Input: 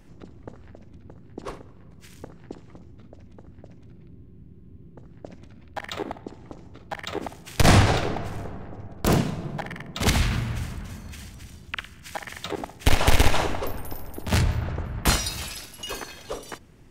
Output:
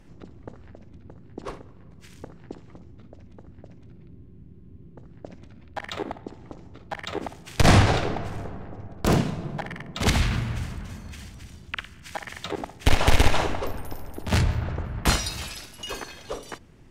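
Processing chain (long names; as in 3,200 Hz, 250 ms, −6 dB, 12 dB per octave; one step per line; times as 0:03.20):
high-shelf EQ 11,000 Hz −9.5 dB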